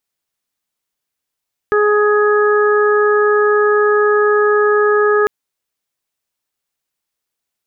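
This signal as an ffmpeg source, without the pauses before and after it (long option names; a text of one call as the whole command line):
ffmpeg -f lavfi -i "aevalsrc='0.282*sin(2*PI*418*t)+0.0473*sin(2*PI*836*t)+0.141*sin(2*PI*1254*t)+0.112*sin(2*PI*1672*t)':duration=3.55:sample_rate=44100" out.wav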